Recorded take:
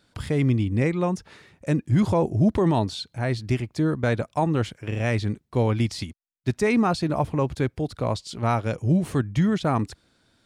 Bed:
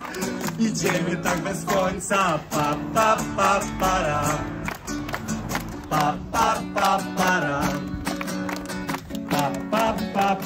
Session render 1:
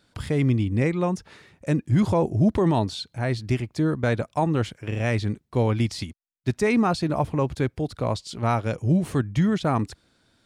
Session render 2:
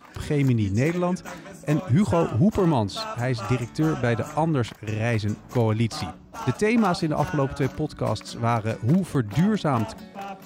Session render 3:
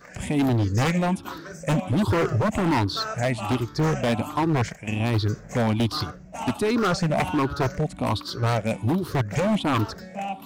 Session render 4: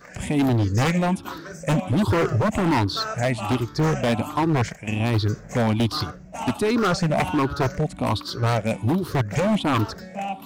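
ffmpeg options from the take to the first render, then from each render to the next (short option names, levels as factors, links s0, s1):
-af anull
-filter_complex "[1:a]volume=0.188[s0];[0:a][s0]amix=inputs=2:normalize=0"
-af "afftfilt=real='re*pow(10,14/40*sin(2*PI*(0.56*log(max(b,1)*sr/1024/100)/log(2)-(1.3)*(pts-256)/sr)))':imag='im*pow(10,14/40*sin(2*PI*(0.56*log(max(b,1)*sr/1024/100)/log(2)-(1.3)*(pts-256)/sr)))':win_size=1024:overlap=0.75,aeval=exprs='0.158*(abs(mod(val(0)/0.158+3,4)-2)-1)':c=same"
-af "volume=1.19"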